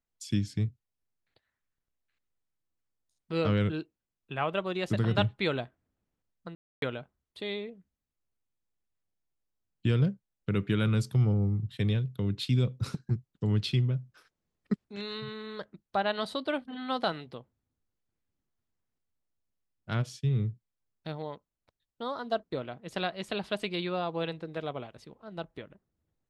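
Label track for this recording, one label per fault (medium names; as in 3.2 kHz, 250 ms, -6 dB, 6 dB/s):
6.550000	6.820000	dropout 272 ms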